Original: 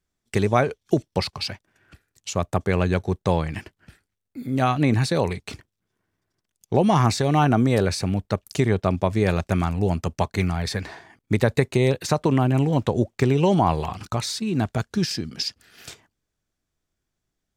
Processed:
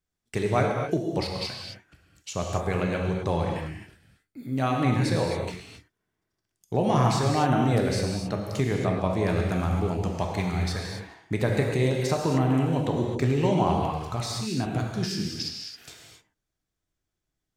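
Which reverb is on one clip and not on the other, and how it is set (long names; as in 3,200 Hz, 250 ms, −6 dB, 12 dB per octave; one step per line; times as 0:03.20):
reverb whose tail is shaped and stops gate 290 ms flat, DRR 0 dB
level −6.5 dB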